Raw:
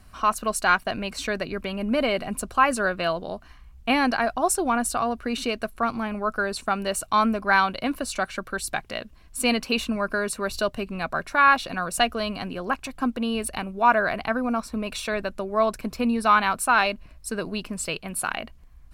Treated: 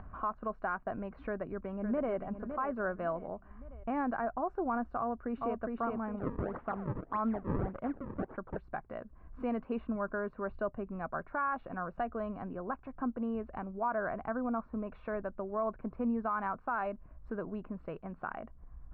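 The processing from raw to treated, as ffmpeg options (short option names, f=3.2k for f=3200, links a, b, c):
-filter_complex "[0:a]asplit=2[a][b];[b]afade=t=in:st=1.25:d=0.01,afade=t=out:st=2.15:d=0.01,aecho=0:1:560|1120|1680:0.354813|0.106444|0.0319332[c];[a][c]amix=inputs=2:normalize=0,asplit=2[d][e];[e]afade=t=in:st=5:d=0.01,afade=t=out:st=5.6:d=0.01,aecho=0:1:410|820|1230|1640|2050:0.749894|0.299958|0.119983|0.0479932|0.0191973[f];[d][f]amix=inputs=2:normalize=0,asettb=1/sr,asplit=3[g][h][i];[g]atrim=end=6.194[j];[h]atrim=start=6.19:end=8.57,asetpts=PTS-STARTPTS,afade=t=in:d=0.004:c=qsin,afade=t=out:st=2.376:d=0.004:c=qsin,acrusher=samples=35:mix=1:aa=0.000001:lfo=1:lforange=56:lforate=1.7[k];[i]atrim=start=8.566[l];[j][k]acrossfade=d=0.004:c1=hsin:c2=qsin[m];[m][l]acrossfade=d=0.004:c1=qsin:c2=hsin,lowpass=f=1.4k:w=0.5412,lowpass=f=1.4k:w=1.3066,acompressor=mode=upward:threshold=-29dB:ratio=2.5,alimiter=limit=-16dB:level=0:latency=1:release=73,volume=-8.5dB"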